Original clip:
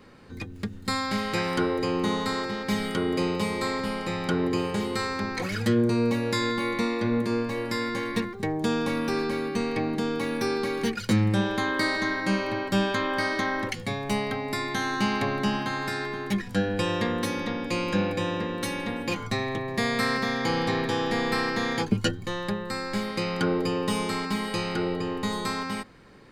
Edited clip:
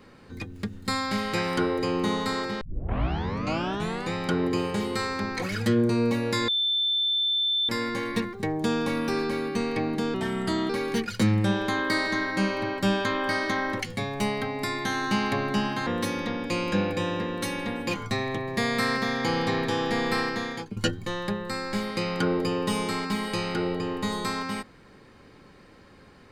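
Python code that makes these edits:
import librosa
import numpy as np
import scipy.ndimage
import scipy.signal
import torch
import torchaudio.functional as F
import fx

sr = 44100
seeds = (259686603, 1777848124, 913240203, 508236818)

y = fx.edit(x, sr, fx.tape_start(start_s=2.61, length_s=1.52),
    fx.bleep(start_s=6.48, length_s=1.21, hz=3540.0, db=-22.0),
    fx.speed_span(start_s=10.14, length_s=0.45, speed=0.81),
    fx.cut(start_s=15.76, length_s=1.31),
    fx.fade_out_to(start_s=21.4, length_s=0.57, floor_db=-16.5), tone=tone)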